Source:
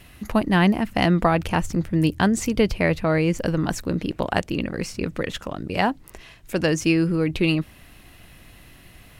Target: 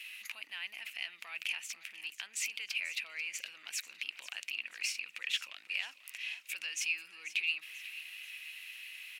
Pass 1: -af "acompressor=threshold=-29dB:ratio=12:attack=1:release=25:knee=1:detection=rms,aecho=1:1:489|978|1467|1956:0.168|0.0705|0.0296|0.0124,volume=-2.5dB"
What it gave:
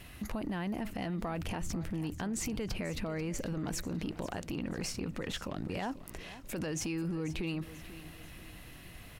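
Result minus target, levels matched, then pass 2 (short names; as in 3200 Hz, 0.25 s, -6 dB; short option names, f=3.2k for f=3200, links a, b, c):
2000 Hz band -9.0 dB
-af "acompressor=threshold=-29dB:ratio=12:attack=1:release=25:knee=1:detection=rms,highpass=f=2.5k:t=q:w=4.7,aecho=1:1:489|978|1467|1956:0.168|0.0705|0.0296|0.0124,volume=-2.5dB"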